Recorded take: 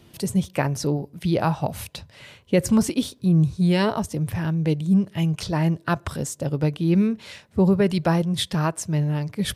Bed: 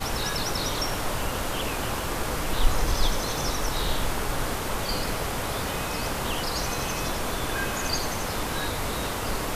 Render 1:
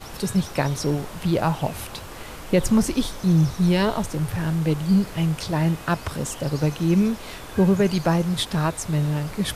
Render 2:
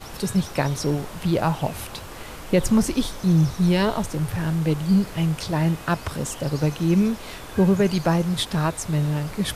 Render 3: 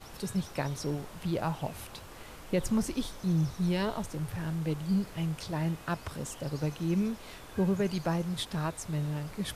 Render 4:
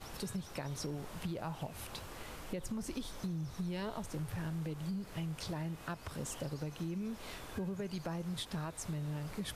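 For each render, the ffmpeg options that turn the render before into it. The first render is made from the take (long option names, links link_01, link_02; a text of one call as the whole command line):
ffmpeg -i in.wav -i bed.wav -filter_complex "[1:a]volume=-9.5dB[link_01];[0:a][link_01]amix=inputs=2:normalize=0" out.wav
ffmpeg -i in.wav -af anull out.wav
ffmpeg -i in.wav -af "volume=-10dB" out.wav
ffmpeg -i in.wav -af "alimiter=level_in=2.5dB:limit=-24dB:level=0:latency=1:release=264,volume=-2.5dB,acompressor=threshold=-36dB:ratio=6" out.wav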